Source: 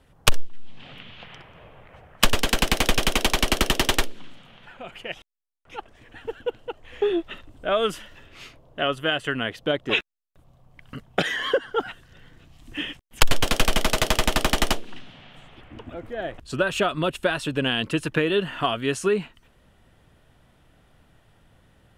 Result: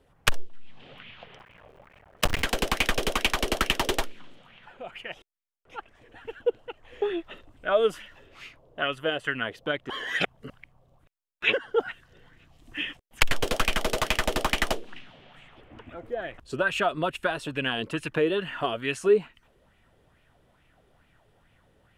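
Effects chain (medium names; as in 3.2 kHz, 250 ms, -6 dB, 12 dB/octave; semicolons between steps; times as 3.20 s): 1.39–2.43 s: cycle switcher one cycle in 3, muted; 9.90–11.53 s: reverse; sweeping bell 2.3 Hz 390–2500 Hz +11 dB; trim -7 dB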